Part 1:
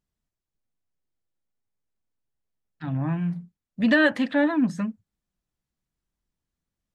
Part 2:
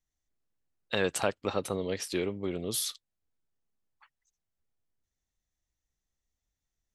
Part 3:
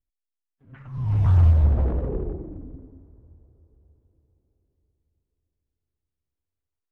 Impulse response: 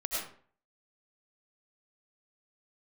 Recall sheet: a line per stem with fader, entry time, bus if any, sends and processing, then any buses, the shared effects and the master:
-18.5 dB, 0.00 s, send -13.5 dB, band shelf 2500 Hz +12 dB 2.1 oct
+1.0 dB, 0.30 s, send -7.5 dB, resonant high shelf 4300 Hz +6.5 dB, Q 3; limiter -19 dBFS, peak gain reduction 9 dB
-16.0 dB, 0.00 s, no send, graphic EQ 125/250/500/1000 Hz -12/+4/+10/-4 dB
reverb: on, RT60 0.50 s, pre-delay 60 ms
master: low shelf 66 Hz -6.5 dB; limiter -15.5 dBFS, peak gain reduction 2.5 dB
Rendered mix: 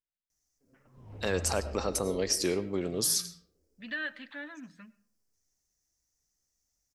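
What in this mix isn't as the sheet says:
stem 1 -18.5 dB -> -25.0 dB; reverb return -10.0 dB

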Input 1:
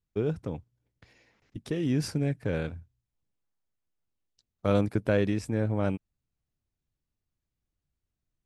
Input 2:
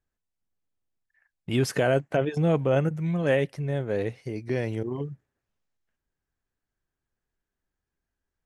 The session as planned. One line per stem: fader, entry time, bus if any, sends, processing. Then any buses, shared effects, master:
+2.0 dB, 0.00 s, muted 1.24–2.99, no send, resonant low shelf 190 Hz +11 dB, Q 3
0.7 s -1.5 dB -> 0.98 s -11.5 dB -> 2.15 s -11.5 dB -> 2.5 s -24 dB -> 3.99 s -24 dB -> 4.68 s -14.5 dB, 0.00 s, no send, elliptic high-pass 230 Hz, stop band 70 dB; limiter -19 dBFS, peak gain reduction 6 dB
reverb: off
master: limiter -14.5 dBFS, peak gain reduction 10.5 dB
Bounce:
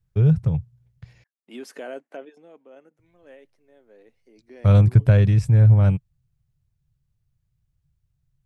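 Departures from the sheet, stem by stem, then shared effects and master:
stem 2: missing limiter -19 dBFS, peak gain reduction 6 dB; master: missing limiter -14.5 dBFS, peak gain reduction 10.5 dB

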